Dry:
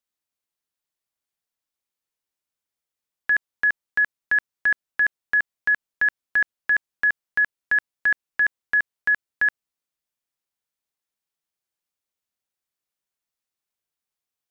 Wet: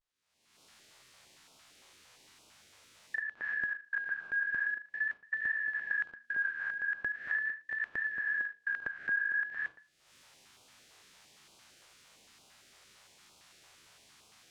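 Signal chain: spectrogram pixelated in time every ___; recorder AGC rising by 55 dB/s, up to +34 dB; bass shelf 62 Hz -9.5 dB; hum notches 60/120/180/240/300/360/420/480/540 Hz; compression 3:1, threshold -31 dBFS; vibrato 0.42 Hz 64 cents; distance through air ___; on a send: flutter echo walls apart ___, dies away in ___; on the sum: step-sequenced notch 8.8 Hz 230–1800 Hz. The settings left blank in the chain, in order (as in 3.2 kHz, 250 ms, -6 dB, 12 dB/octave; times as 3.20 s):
200 ms, 67 m, 6.6 m, 0.33 s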